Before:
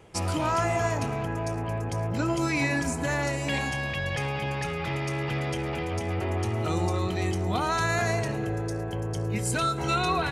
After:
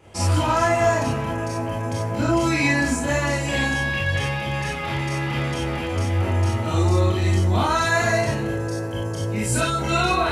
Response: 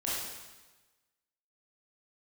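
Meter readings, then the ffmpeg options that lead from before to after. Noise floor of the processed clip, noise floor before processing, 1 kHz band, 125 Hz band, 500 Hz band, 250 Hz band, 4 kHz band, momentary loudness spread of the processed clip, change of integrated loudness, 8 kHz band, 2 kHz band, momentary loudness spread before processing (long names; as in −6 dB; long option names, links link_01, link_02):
−27 dBFS, −32 dBFS, +5.5 dB, +6.5 dB, +6.0 dB, +5.5 dB, +6.0 dB, 7 LU, +6.0 dB, +6.0 dB, +6.5 dB, 5 LU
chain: -filter_complex "[1:a]atrim=start_sample=2205,atrim=end_sample=4410[link_01];[0:a][link_01]afir=irnorm=-1:irlink=0,volume=2dB"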